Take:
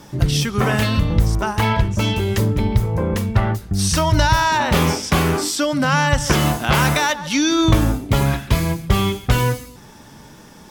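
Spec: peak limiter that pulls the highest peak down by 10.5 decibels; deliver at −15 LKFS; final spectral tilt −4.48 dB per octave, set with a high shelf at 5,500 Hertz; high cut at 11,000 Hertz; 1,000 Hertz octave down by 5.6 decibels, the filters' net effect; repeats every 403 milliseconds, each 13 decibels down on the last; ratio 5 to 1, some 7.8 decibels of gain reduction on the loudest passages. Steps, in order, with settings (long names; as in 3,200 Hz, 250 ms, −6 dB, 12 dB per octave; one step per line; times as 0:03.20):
low-pass filter 11,000 Hz
parametric band 1,000 Hz −7 dB
high-shelf EQ 5,500 Hz +6 dB
downward compressor 5 to 1, threshold −19 dBFS
brickwall limiter −17 dBFS
repeating echo 403 ms, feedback 22%, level −13 dB
level +11 dB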